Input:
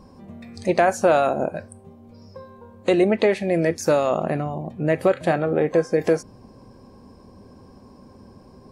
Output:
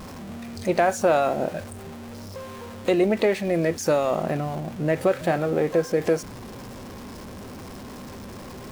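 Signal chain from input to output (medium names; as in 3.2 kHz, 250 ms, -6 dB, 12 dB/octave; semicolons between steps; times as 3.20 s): jump at every zero crossing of -32 dBFS; trim -3 dB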